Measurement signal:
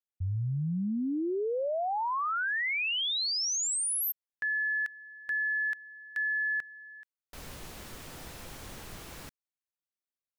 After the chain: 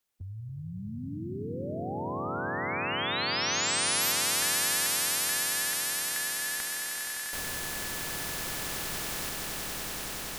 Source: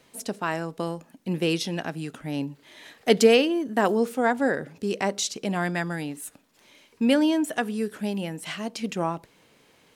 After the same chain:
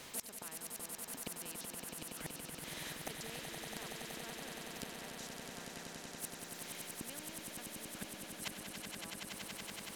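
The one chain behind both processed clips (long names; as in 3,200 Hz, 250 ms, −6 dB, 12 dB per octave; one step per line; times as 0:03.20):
gate with flip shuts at −25 dBFS, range −29 dB
echo that builds up and dies away 94 ms, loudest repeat 8, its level −10 dB
every bin compressed towards the loudest bin 2 to 1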